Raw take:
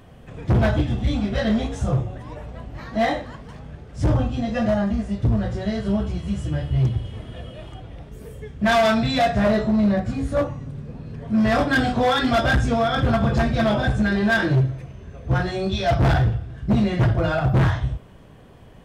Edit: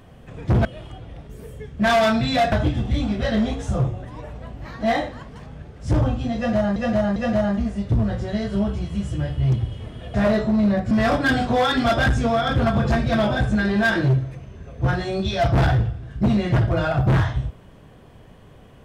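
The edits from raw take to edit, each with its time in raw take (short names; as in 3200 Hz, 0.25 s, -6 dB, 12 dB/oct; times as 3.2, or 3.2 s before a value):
4.49–4.89 loop, 3 plays
7.47–9.34 move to 0.65
10.11–11.38 cut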